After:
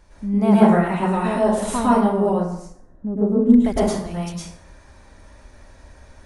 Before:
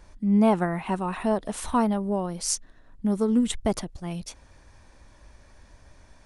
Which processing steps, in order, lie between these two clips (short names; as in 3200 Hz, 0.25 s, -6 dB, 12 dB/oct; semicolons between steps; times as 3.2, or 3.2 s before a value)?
2.29–3.54 EQ curve 510 Hz 0 dB, 3400 Hz -24 dB, 8800 Hz -29 dB; plate-style reverb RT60 0.72 s, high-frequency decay 0.6×, pre-delay 95 ms, DRR -8.5 dB; gain -2 dB